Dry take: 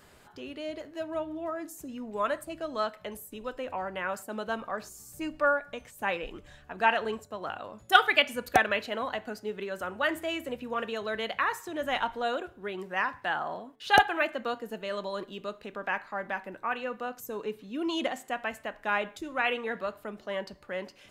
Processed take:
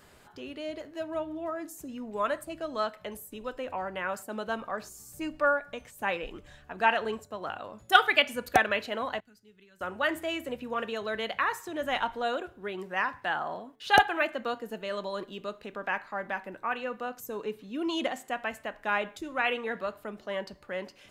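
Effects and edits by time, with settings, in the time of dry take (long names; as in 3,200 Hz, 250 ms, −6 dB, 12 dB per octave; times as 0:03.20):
0:09.20–0:09.81: guitar amp tone stack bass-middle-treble 6-0-2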